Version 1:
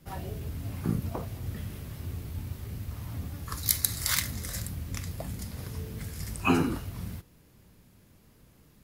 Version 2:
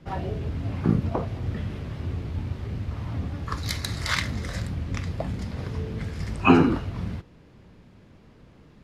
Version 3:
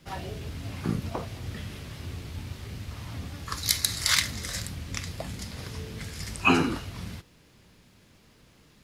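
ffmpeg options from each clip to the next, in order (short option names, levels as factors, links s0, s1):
-af "lowpass=3800,equalizer=f=480:w=0.39:g=3.5,volume=1.88"
-af "crystalizer=i=7.5:c=0,volume=0.422"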